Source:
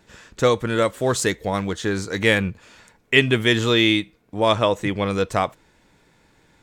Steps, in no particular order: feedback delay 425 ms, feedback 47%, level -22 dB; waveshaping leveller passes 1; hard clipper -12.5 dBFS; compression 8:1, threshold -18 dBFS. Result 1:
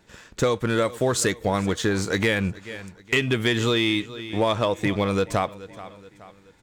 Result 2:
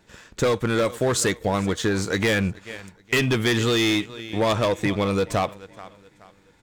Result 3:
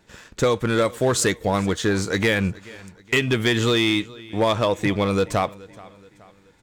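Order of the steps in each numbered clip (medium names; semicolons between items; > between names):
waveshaping leveller > feedback delay > compression > hard clipper; feedback delay > waveshaping leveller > hard clipper > compression; compression > waveshaping leveller > feedback delay > hard clipper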